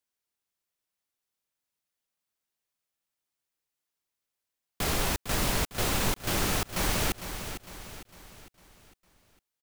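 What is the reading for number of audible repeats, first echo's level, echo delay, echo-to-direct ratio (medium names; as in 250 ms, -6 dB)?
4, -10.0 dB, 454 ms, -9.0 dB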